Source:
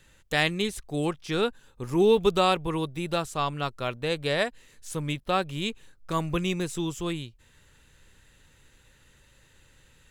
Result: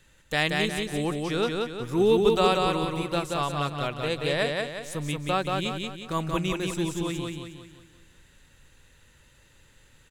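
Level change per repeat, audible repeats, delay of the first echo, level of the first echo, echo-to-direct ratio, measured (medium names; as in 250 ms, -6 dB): -7.0 dB, 5, 180 ms, -3.0 dB, -2.0 dB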